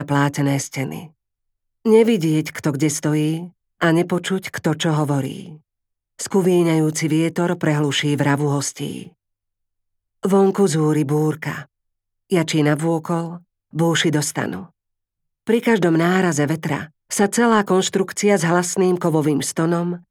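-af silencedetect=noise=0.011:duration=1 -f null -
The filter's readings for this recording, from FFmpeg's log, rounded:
silence_start: 9.09
silence_end: 10.23 | silence_duration: 1.14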